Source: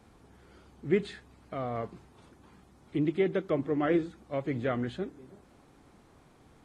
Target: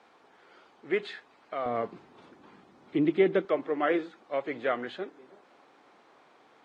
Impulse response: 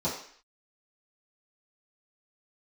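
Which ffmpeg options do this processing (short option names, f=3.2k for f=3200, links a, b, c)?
-af "asetnsamples=n=441:p=0,asendcmd='1.66 highpass f 240;3.45 highpass f 500',highpass=550,lowpass=4.1k,volume=5dB"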